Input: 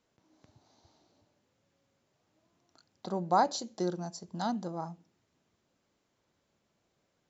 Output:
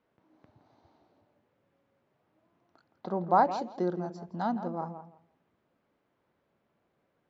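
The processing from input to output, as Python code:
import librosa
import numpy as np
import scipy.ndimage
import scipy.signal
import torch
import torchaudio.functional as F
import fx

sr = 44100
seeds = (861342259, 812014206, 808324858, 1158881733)

y = scipy.signal.sosfilt(scipy.signal.butter(2, 2100.0, 'lowpass', fs=sr, output='sos'), x)
y = fx.low_shelf(y, sr, hz=120.0, db=-7.0)
y = fx.echo_tape(y, sr, ms=166, feedback_pct=21, wet_db=-8.5, lp_hz=1400.0, drive_db=20.0, wow_cents=13)
y = y * 10.0 ** (3.0 / 20.0)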